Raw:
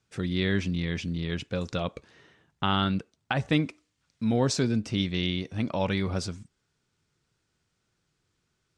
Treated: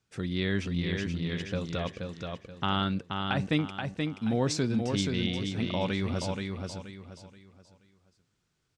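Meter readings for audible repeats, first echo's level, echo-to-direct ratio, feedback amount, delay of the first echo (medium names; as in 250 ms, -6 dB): 4, -4.5 dB, -4.0 dB, 32%, 478 ms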